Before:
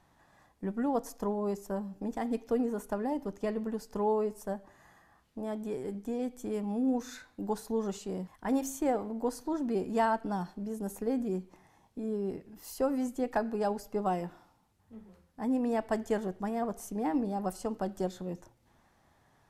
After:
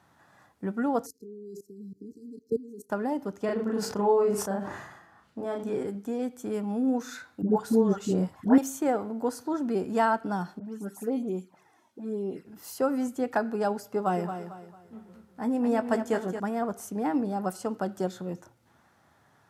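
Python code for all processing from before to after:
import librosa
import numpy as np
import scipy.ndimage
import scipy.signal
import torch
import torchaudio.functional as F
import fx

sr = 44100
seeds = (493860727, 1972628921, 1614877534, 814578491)

y = fx.chain(x, sr, fx.peak_eq(hz=640.0, db=8.0, octaves=1.9),
    fx.level_steps(step_db=22),
    fx.brickwall_bandstop(low_hz=460.0, high_hz=3900.0), at=(1.06, 2.9))
y = fx.chain(y, sr, fx.high_shelf(hz=9500.0, db=-12.0),
    fx.doubler(ms=35.0, db=-2.5),
    fx.sustainer(db_per_s=56.0), at=(3.45, 5.87))
y = fx.chain(y, sr, fx.low_shelf(hz=500.0, db=10.0),
    fx.dispersion(late='highs', ms=90.0, hz=720.0), at=(7.42, 8.58))
y = fx.chain(y, sr, fx.highpass(hz=180.0, slope=12),
    fx.env_flanger(rest_ms=3.7, full_db=-30.0),
    fx.dispersion(late='highs', ms=68.0, hz=2500.0), at=(10.59, 12.45))
y = fx.chain(y, sr, fx.doubler(ms=17.0, db=-11),
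    fx.echo_feedback(ms=224, feedback_pct=35, wet_db=-9), at=(13.85, 16.4))
y = scipy.signal.sosfilt(scipy.signal.butter(4, 83.0, 'highpass', fs=sr, output='sos'), y)
y = fx.peak_eq(y, sr, hz=1400.0, db=8.0, octaves=0.26)
y = F.gain(torch.from_numpy(y), 3.0).numpy()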